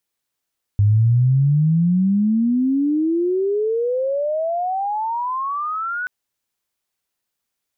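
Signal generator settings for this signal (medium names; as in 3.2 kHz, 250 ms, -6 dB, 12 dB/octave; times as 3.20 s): sweep logarithmic 100 Hz -> 1.5 kHz -11 dBFS -> -22 dBFS 5.28 s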